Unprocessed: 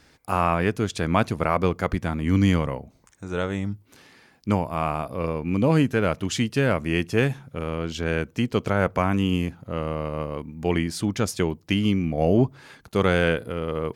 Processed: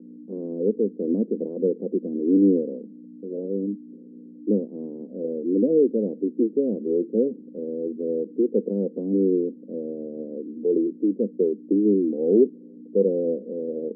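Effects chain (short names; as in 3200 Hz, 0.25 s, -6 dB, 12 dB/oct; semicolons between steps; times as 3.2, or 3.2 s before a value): hum 60 Hz, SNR 16 dB; formant shift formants +5 st; Chebyshev band-pass 200–500 Hz, order 4; gain +4 dB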